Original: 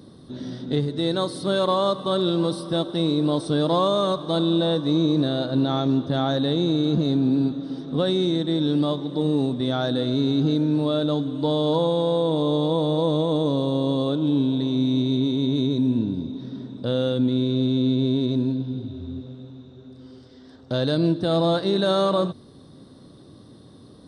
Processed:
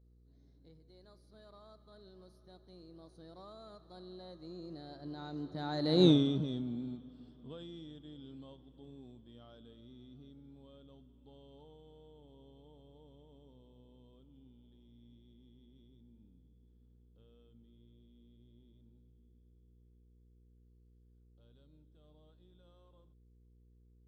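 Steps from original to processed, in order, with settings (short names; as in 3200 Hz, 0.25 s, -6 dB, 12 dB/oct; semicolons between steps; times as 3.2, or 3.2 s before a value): Doppler pass-by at 6.06, 31 m/s, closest 2.2 m; buzz 60 Hz, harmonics 8, -64 dBFS -8 dB/oct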